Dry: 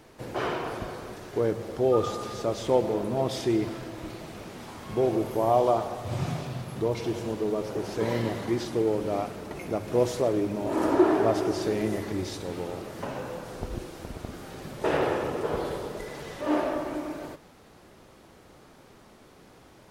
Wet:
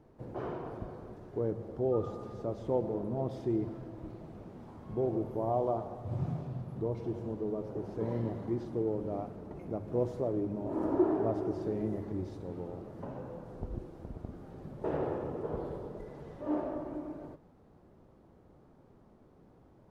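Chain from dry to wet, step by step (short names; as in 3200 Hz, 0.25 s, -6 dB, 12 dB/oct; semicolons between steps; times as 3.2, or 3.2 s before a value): EQ curve 160 Hz 0 dB, 910 Hz -7 dB, 2400 Hz -19 dB, 8400 Hz -23 dB; gain -3.5 dB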